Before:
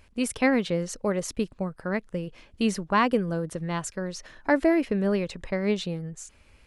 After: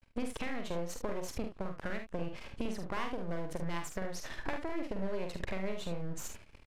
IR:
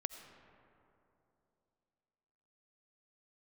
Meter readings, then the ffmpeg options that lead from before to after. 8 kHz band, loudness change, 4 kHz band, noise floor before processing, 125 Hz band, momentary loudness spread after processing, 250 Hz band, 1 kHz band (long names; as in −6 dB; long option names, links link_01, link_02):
−9.5 dB, −12.5 dB, −9.5 dB, −58 dBFS, −10.0 dB, 3 LU, −13.5 dB, −12.0 dB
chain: -filter_complex "[0:a]agate=range=-18dB:threshold=-53dB:ratio=16:detection=peak,highshelf=frequency=6400:gain=-11.5,alimiter=limit=-19.5dB:level=0:latency=1:release=400,acompressor=threshold=-41dB:ratio=10,aeval=exprs='max(val(0),0)':channel_layout=same,asplit=2[link_01][link_02];[link_02]aecho=0:1:47|74:0.501|0.335[link_03];[link_01][link_03]amix=inputs=2:normalize=0,aresample=32000,aresample=44100,volume=10.5dB"